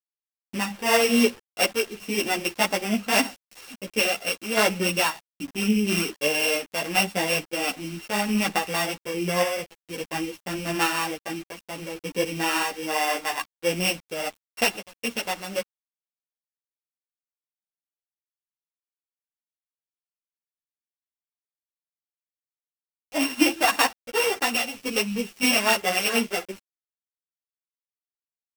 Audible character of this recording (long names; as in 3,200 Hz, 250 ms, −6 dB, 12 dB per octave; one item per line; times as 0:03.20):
a buzz of ramps at a fixed pitch in blocks of 16 samples
sample-and-hold tremolo
a quantiser's noise floor 8 bits, dither none
a shimmering, thickened sound